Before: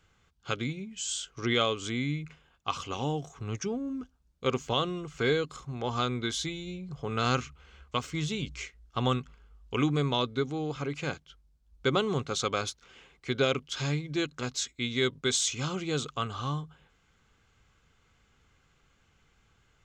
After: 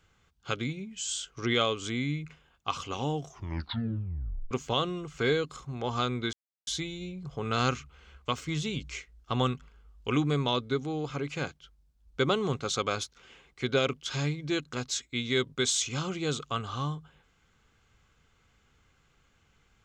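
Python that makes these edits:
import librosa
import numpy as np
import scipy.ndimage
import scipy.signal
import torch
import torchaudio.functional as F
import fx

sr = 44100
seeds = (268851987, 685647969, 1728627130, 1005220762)

y = fx.edit(x, sr, fx.tape_stop(start_s=3.24, length_s=1.27),
    fx.insert_silence(at_s=6.33, length_s=0.34), tone=tone)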